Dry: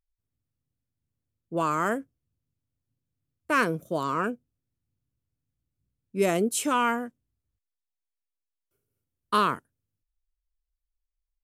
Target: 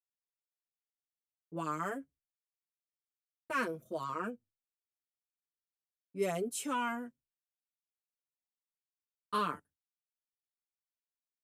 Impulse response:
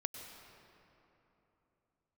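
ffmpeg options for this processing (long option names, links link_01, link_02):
-filter_complex "[0:a]agate=range=-33dB:threshold=-46dB:ratio=3:detection=peak,asplit=2[link_01][link_02];[link_02]adelay=5.9,afreqshift=-0.25[link_03];[link_01][link_03]amix=inputs=2:normalize=1,volume=-7.5dB"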